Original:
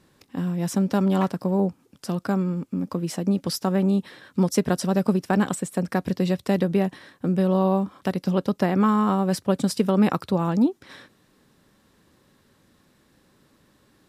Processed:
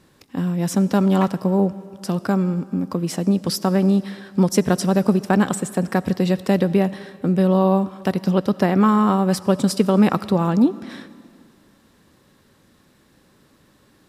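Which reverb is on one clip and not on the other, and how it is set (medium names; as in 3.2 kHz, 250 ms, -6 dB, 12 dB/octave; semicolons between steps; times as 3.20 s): algorithmic reverb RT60 2.2 s, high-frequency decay 0.95×, pre-delay 35 ms, DRR 17.5 dB; trim +4 dB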